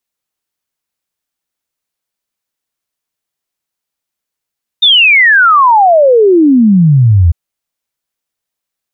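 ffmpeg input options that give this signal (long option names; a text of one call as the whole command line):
ffmpeg -f lavfi -i "aevalsrc='0.708*clip(min(t,2.5-t)/0.01,0,1)*sin(2*PI*3700*2.5/log(79/3700)*(exp(log(79/3700)*t/2.5)-1))':duration=2.5:sample_rate=44100" out.wav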